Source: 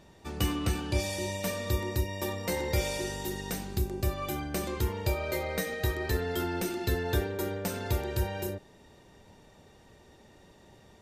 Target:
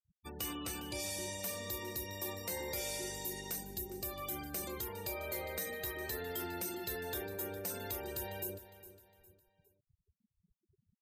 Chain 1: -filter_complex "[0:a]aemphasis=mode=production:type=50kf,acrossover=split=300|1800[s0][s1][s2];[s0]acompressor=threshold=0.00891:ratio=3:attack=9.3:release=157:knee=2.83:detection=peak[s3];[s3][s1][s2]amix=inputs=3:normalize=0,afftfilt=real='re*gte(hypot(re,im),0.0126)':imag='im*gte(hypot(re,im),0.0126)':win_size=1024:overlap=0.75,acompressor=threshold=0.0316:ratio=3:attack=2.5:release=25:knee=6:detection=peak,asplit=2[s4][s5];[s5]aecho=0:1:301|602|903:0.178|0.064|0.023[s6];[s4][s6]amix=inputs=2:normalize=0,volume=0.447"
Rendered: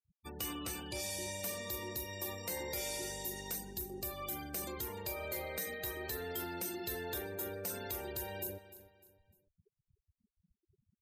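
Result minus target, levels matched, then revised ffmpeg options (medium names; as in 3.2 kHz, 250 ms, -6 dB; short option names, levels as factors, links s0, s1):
echo 107 ms early
-filter_complex "[0:a]aemphasis=mode=production:type=50kf,acrossover=split=300|1800[s0][s1][s2];[s0]acompressor=threshold=0.00891:ratio=3:attack=9.3:release=157:knee=2.83:detection=peak[s3];[s3][s1][s2]amix=inputs=3:normalize=0,afftfilt=real='re*gte(hypot(re,im),0.0126)':imag='im*gte(hypot(re,im),0.0126)':win_size=1024:overlap=0.75,acompressor=threshold=0.0316:ratio=3:attack=2.5:release=25:knee=6:detection=peak,asplit=2[s4][s5];[s5]aecho=0:1:408|816|1224:0.178|0.064|0.023[s6];[s4][s6]amix=inputs=2:normalize=0,volume=0.447"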